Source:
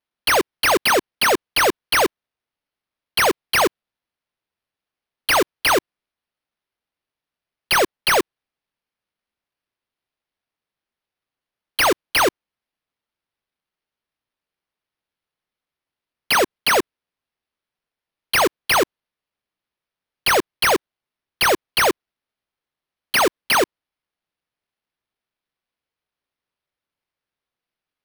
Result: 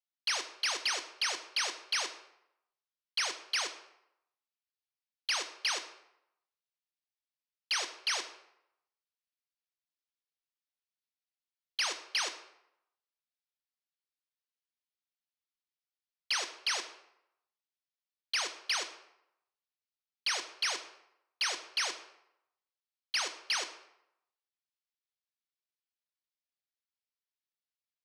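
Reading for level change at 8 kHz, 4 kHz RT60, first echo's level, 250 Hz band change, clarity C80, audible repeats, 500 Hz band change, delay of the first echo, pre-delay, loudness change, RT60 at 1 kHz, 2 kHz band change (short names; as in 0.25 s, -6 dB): -10.5 dB, 0.55 s, none, -30.5 dB, 13.5 dB, none, -27.0 dB, none, 14 ms, -14.5 dB, 0.80 s, -15.5 dB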